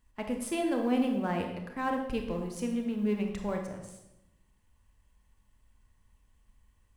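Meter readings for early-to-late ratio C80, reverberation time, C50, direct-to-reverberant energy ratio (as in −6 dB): 7.5 dB, 0.90 s, 5.0 dB, 3.0 dB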